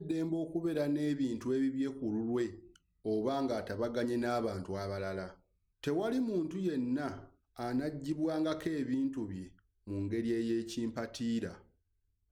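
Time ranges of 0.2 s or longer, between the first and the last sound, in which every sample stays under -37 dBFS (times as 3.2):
2.48–3.05
5.26–5.84
7.14–7.59
9.42–9.88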